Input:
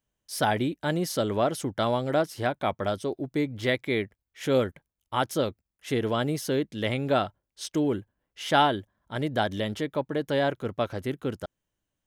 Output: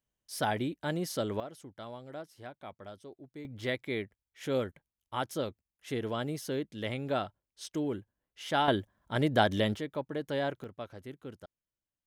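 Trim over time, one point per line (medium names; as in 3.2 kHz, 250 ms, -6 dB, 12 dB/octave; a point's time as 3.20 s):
-6 dB
from 1.40 s -18.5 dB
from 3.45 s -7.5 dB
from 8.68 s +1 dB
from 9.76 s -7 dB
from 10.64 s -14 dB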